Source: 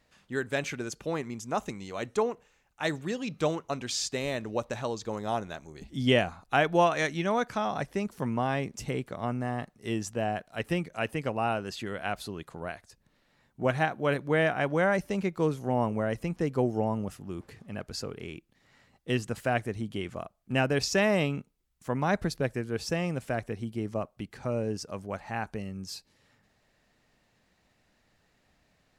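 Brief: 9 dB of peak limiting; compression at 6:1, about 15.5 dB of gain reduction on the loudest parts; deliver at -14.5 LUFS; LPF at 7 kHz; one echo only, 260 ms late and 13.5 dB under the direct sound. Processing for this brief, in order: low-pass 7 kHz; compression 6:1, threshold -35 dBFS; peak limiter -30 dBFS; delay 260 ms -13.5 dB; trim +27 dB

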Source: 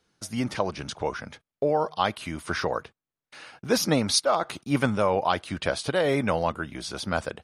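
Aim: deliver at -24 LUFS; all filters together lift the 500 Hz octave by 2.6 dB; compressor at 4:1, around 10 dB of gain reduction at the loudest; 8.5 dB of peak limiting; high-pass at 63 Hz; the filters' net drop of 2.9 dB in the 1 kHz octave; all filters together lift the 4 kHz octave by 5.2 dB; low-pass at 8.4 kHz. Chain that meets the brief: high-pass 63 Hz; low-pass 8.4 kHz; peaking EQ 500 Hz +4.5 dB; peaking EQ 1 kHz -6 dB; peaking EQ 4 kHz +7 dB; compression 4:1, threshold -27 dBFS; trim +9.5 dB; peak limiter -12.5 dBFS

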